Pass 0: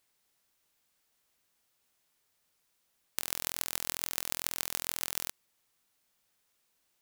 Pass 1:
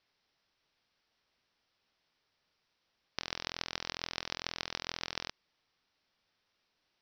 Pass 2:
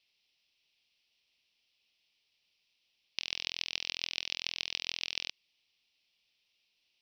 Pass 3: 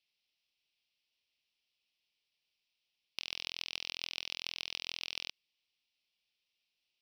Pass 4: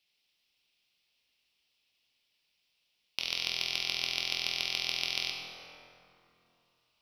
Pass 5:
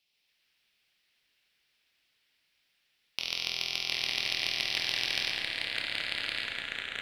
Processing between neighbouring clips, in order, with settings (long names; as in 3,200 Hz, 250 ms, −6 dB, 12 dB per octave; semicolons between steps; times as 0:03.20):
Butterworth low-pass 5,700 Hz 96 dB per octave; level +1 dB
high shelf with overshoot 2,000 Hz +9.5 dB, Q 3; level −8 dB
leveller curve on the samples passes 1; level −6 dB
dense smooth reverb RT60 3.2 s, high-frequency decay 0.45×, DRR 0.5 dB; level +6 dB
delay with pitch and tempo change per echo 135 ms, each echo −3 semitones, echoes 3